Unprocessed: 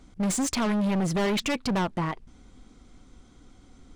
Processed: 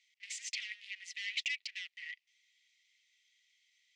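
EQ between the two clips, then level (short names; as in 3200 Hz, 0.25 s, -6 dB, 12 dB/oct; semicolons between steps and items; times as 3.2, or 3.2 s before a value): rippled Chebyshev high-pass 1900 Hz, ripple 3 dB; air absorption 160 m; +1.0 dB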